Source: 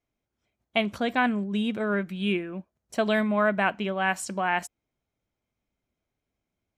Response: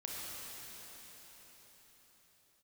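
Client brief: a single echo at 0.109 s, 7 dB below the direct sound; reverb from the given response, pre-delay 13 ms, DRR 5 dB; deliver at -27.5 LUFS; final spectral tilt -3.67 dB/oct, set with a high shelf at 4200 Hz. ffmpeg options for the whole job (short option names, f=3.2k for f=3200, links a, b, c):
-filter_complex "[0:a]highshelf=f=4.2k:g=-5.5,aecho=1:1:109:0.447,asplit=2[a][b];[1:a]atrim=start_sample=2205,adelay=13[c];[b][c]afir=irnorm=-1:irlink=0,volume=-6dB[d];[a][d]amix=inputs=2:normalize=0,volume=-1.5dB"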